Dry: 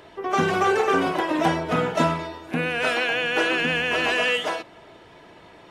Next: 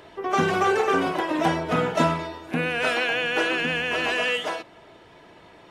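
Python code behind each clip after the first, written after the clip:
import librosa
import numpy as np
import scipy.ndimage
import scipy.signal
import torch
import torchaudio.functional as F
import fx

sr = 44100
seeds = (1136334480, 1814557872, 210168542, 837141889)

y = fx.rider(x, sr, range_db=10, speed_s=2.0)
y = y * librosa.db_to_amplitude(-1.5)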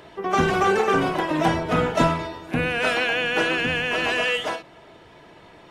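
y = fx.octave_divider(x, sr, octaves=1, level_db=-6.0)
y = fx.end_taper(y, sr, db_per_s=210.0)
y = y * librosa.db_to_amplitude(1.5)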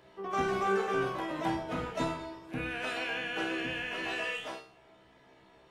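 y = fx.comb_fb(x, sr, f0_hz=65.0, decay_s=0.46, harmonics='all', damping=0.0, mix_pct=90)
y = y * librosa.db_to_amplitude(-3.5)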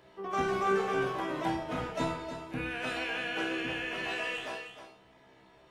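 y = x + 10.0 ** (-9.5 / 20.0) * np.pad(x, (int(312 * sr / 1000.0), 0))[:len(x)]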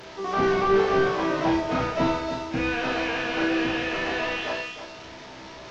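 y = fx.delta_mod(x, sr, bps=32000, step_db=-45.5)
y = fx.doubler(y, sr, ms=34.0, db=-3.0)
y = y * librosa.db_to_amplitude(8.0)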